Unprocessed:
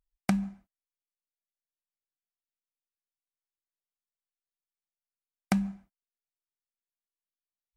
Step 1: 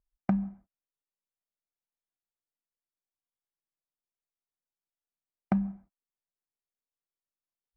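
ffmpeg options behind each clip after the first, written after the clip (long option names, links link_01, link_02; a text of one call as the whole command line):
ffmpeg -i in.wav -af "lowpass=1100" out.wav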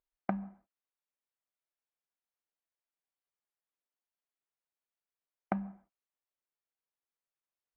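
ffmpeg -i in.wav -af "bass=frequency=250:gain=-15,treble=frequency=4000:gain=-15,volume=1dB" out.wav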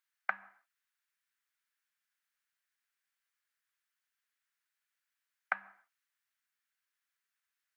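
ffmpeg -i in.wav -af "highpass=frequency=1600:width_type=q:width=2.7,volume=5.5dB" out.wav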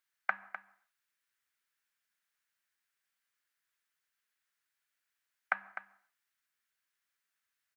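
ffmpeg -i in.wav -af "aecho=1:1:253:0.266,volume=1.5dB" out.wav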